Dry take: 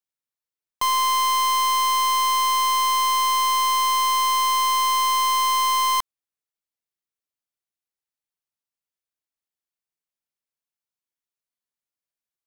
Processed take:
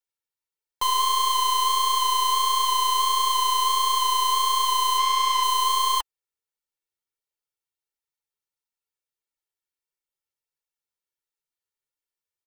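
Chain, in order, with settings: comb 2.2 ms, depth 86%; 4.98–5.43 s: overdrive pedal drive 11 dB, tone 5.8 kHz, clips at -14.5 dBFS; flange 1.5 Hz, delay 3.1 ms, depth 9.6 ms, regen +26%

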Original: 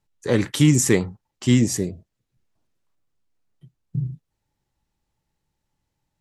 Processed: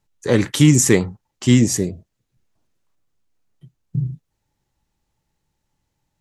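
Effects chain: peaking EQ 6.5 kHz +2.5 dB 0.27 oct; trim +3.5 dB

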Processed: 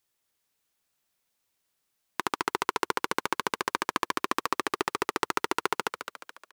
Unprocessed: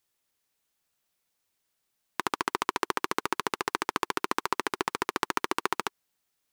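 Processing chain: frequency-shifting echo 213 ms, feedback 47%, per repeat +57 Hz, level -8.5 dB

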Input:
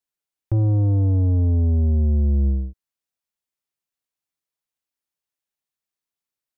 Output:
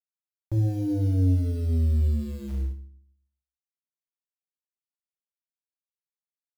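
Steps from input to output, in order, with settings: companded quantiser 6-bit; FDN reverb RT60 0.49 s, low-frequency decay 1.55×, high-frequency decay 0.95×, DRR 3.5 dB; trim -8 dB

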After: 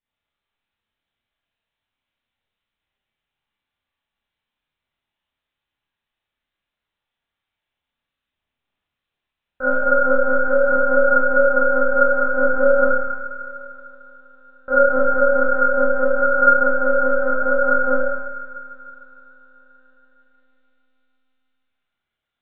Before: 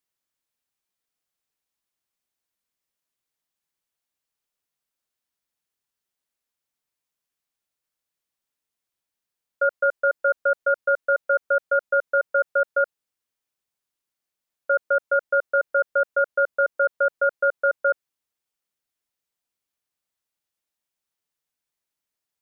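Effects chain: chorus voices 4, 1.3 Hz, delay 14 ms, depth 3 ms; feedback echo behind a high-pass 154 ms, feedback 74%, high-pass 1.4 kHz, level -4.5 dB; monotone LPC vocoder at 8 kHz 260 Hz; Schroeder reverb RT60 0.91 s, combs from 27 ms, DRR -7 dB; trim +2.5 dB

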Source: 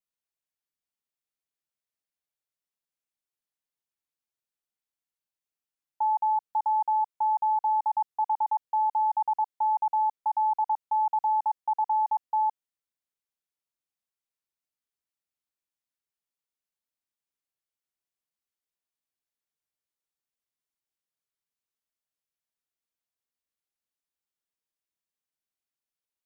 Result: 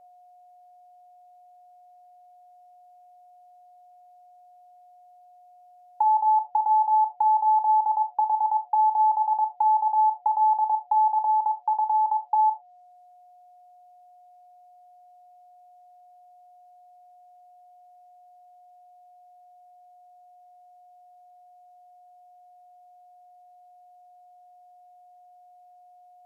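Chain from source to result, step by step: whistle 720 Hz -61 dBFS; 11.21–12.31 s: dynamic bell 750 Hz, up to -4 dB, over -38 dBFS, Q 2.9; in parallel at 0 dB: compression, threshold -35 dBFS, peak gain reduction 11 dB; on the sum: low-pass that closes with the level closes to 840 Hz, closed at -22 dBFS; on a send at -11 dB: resonant high-pass 570 Hz, resonance Q 4.9 + reverberation, pre-delay 3 ms; on the sum: trim +2.5 dB

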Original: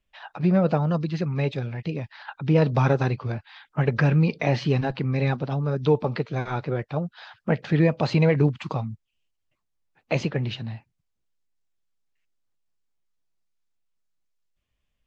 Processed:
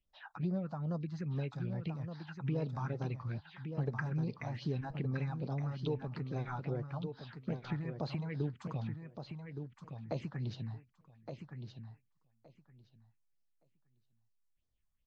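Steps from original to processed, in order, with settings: compression 4:1, threshold -26 dBFS, peak gain reduction 10.5 dB; phase shifter stages 4, 2.4 Hz, lowest notch 400–2700 Hz; feedback delay 1168 ms, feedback 16%, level -7.5 dB; trim -8 dB

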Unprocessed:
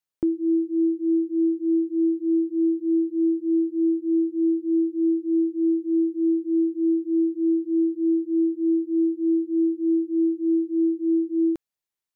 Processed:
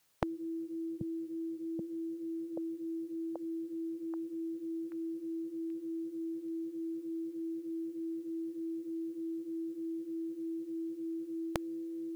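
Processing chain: on a send: repeats whose band climbs or falls 782 ms, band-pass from 160 Hz, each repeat 0.7 oct, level -5 dB; on the sum: spectrum-flattening compressor 4:1

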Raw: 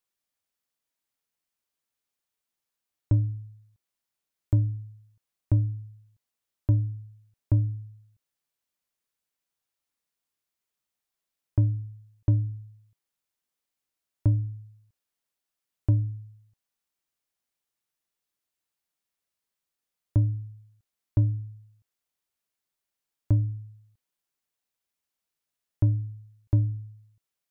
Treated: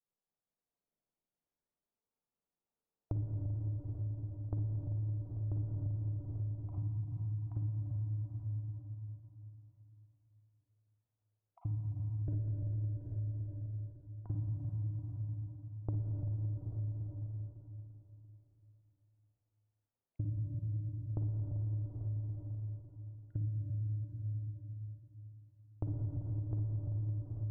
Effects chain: random holes in the spectrogram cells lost 25%; level-controlled noise filter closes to 700 Hz, open at -26 dBFS; Schroeder reverb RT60 3.5 s, DRR -9 dB; compression 6:1, threshold -29 dBFS, peak gain reduction 17 dB; trim -6 dB

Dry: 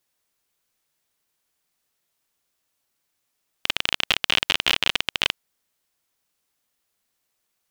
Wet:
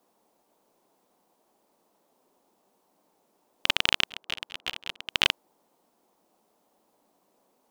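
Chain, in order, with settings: 4.04–5.09 s: slow attack 284 ms; band noise 190–990 Hz -71 dBFS

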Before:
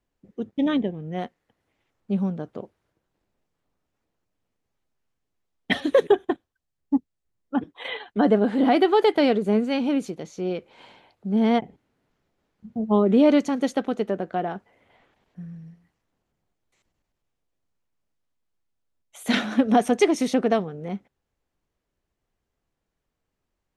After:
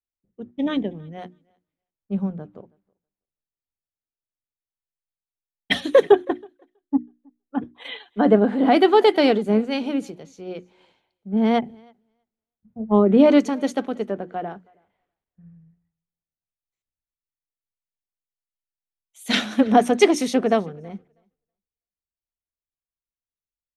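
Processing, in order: hum notches 60/120/180/240/300/360 Hz; on a send: thinning echo 323 ms, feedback 23%, high-pass 170 Hz, level -22 dB; on the sum: three bands expanded up and down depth 70%; trim +1 dB

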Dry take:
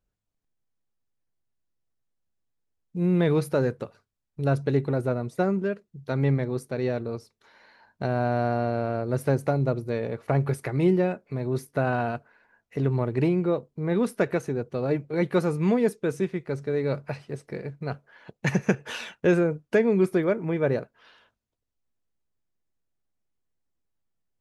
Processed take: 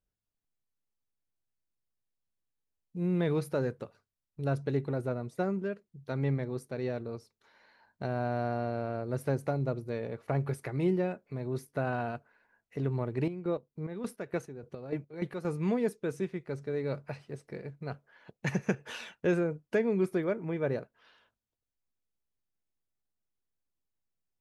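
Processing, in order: 13.16–15.45 s: square tremolo 3.4 Hz, depth 65%, duty 40%; trim -7 dB

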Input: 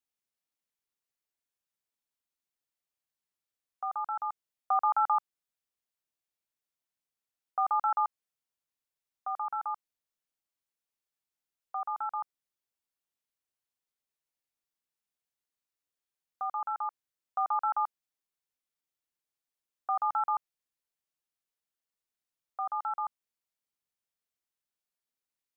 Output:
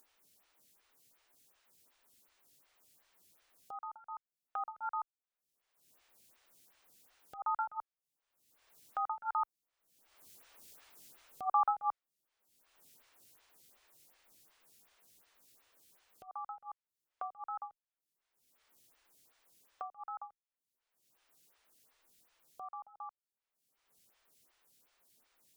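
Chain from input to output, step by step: Doppler pass-by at 10.82 s, 11 m/s, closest 4.3 m; upward compressor, threshold -51 dBFS; lamp-driven phase shifter 2.7 Hz; trim +13.5 dB

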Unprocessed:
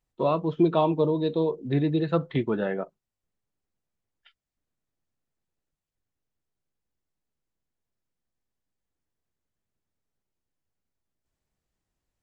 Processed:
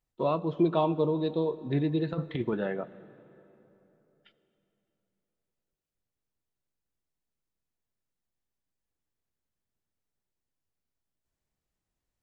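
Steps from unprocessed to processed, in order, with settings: 2.13–2.54 s: compressor with a negative ratio -25 dBFS, ratio -0.5; reverberation RT60 3.4 s, pre-delay 67 ms, DRR 17.5 dB; trim -3.5 dB

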